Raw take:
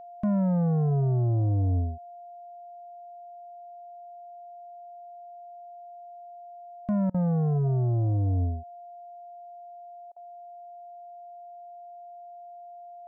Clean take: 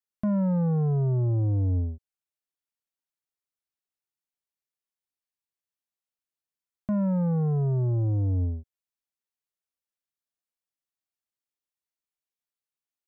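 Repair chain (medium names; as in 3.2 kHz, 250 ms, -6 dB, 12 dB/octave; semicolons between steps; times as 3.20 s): band-stop 700 Hz, Q 30; interpolate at 7.10/10.12 s, 42 ms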